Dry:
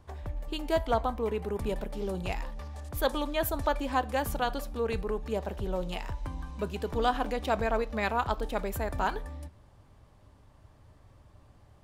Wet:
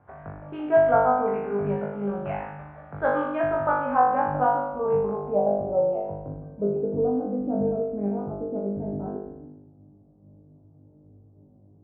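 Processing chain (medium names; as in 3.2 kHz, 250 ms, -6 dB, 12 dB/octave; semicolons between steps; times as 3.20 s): low-pass sweep 1.6 kHz -> 330 Hz, 3.56–7.30 s; cabinet simulation 140–2300 Hz, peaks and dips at 150 Hz +8 dB, 360 Hz -6 dB, 690 Hz +4 dB, 1.1 kHz -6 dB, 1.8 kHz -9 dB; on a send: flutter echo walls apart 3.4 m, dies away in 0.87 s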